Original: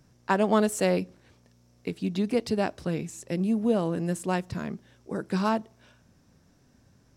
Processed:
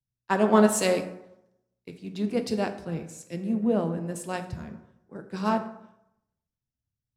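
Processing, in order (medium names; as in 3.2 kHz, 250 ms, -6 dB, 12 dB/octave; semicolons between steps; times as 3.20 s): plate-style reverb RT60 1.6 s, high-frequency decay 0.45×, DRR 5.5 dB; three bands expanded up and down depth 100%; trim -3 dB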